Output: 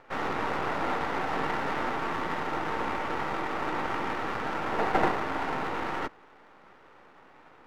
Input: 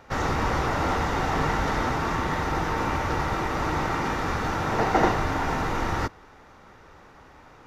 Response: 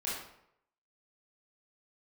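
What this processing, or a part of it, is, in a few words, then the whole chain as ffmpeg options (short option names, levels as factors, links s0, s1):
crystal radio: -af "highpass=240,lowpass=2700,aeval=exprs='if(lt(val(0),0),0.251*val(0),val(0))':c=same"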